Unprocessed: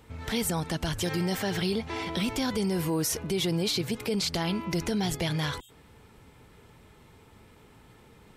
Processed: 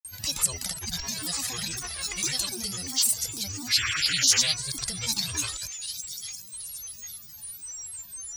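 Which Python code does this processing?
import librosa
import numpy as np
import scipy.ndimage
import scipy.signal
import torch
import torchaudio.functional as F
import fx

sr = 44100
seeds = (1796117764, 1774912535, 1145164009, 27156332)

p1 = x + 0.93 * np.pad(x, (int(1.5 * sr / 1000.0), 0))[:len(x)]
p2 = fx.echo_wet_highpass(p1, sr, ms=791, feedback_pct=34, hz=4200.0, wet_db=-6.5)
p3 = fx.rider(p2, sr, range_db=3, speed_s=0.5)
p4 = p2 + (p3 * 10.0 ** (2.5 / 20.0))
p5 = fx.spec_paint(p4, sr, seeds[0], shape='noise', start_s=3.69, length_s=0.8, low_hz=2100.0, high_hz=5200.0, level_db=-19.0)
p6 = fx.tone_stack(p5, sr, knobs='5-5-5')
p7 = p6 + 10.0 ** (-40.0 / 20.0) * np.sin(2.0 * np.pi * 11000.0 * np.arange(len(p6)) / sr)
p8 = fx.granulator(p7, sr, seeds[1], grain_ms=100.0, per_s=20.0, spray_ms=100.0, spread_st=12)
p9 = fx.band_shelf(p8, sr, hz=6700.0, db=9.5, octaves=1.7)
y = p9 * 10.0 ** (-2.0 / 20.0)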